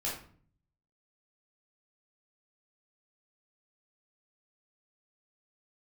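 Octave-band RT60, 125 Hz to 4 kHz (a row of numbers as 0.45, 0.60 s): 0.95, 0.75, 0.50, 0.45, 0.40, 0.35 s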